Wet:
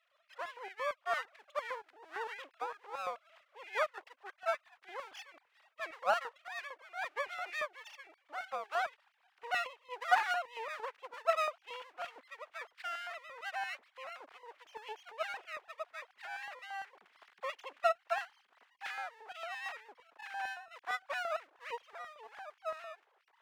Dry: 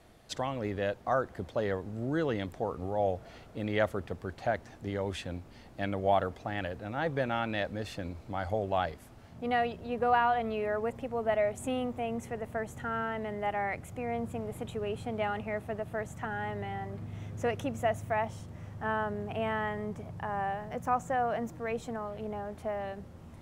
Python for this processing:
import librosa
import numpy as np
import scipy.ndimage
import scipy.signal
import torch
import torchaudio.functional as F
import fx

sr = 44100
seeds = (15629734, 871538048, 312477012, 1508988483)

y = fx.sine_speech(x, sr)
y = np.maximum(y, 0.0)
y = fx.filter_lfo_highpass(y, sr, shape='square', hz=4.4, low_hz=850.0, high_hz=1700.0, q=0.93)
y = F.gain(torch.from_numpy(y), 2.5).numpy()